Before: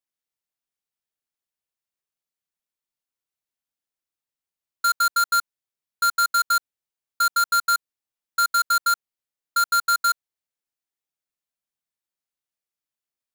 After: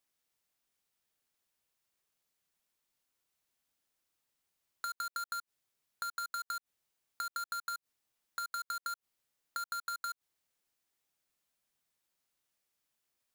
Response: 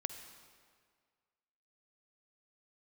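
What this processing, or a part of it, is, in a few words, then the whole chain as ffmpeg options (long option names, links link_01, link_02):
de-esser from a sidechain: -filter_complex "[0:a]asplit=2[link_01][link_02];[link_02]highpass=4200,apad=whole_len=588500[link_03];[link_01][link_03]sidechaincompress=threshold=-49dB:ratio=6:attack=1.9:release=59,volume=7dB"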